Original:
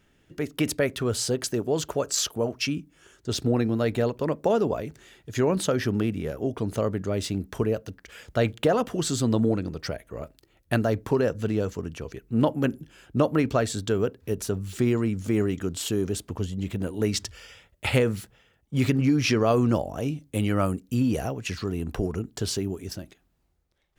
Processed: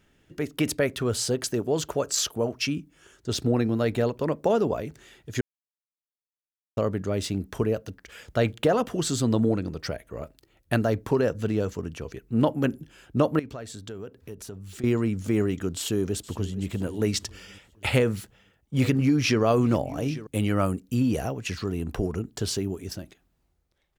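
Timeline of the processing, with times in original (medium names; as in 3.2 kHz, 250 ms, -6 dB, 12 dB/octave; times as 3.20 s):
5.41–6.77 s: mute
13.39–14.84 s: compression 2.5:1, threshold -41 dBFS
15.77–16.66 s: echo throw 460 ms, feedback 45%, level -16.5 dB
17.94–20.27 s: delay 845 ms -17 dB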